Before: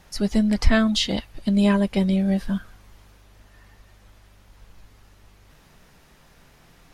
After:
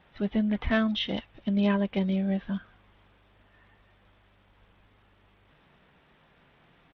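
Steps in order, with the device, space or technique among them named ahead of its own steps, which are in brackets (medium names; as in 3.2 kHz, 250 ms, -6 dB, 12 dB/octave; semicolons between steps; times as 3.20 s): Bluetooth headset (high-pass 120 Hz 6 dB/octave; resampled via 8 kHz; trim -5 dB; SBC 64 kbps 32 kHz)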